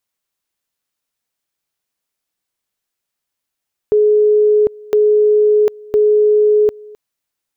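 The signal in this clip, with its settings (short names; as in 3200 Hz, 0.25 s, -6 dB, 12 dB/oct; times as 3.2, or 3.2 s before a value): two-level tone 422 Hz -8 dBFS, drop 24.5 dB, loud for 0.75 s, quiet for 0.26 s, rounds 3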